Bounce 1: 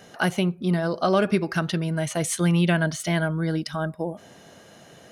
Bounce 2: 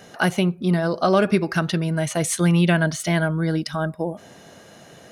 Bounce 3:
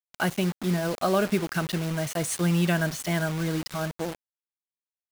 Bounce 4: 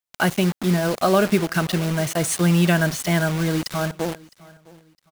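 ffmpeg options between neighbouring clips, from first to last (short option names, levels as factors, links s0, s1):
-af "bandreject=f=3100:w=27,volume=1.41"
-af "acrusher=bits=4:mix=0:aa=0.000001,volume=0.501"
-af "aecho=1:1:660|1320:0.0708|0.0227,volume=2"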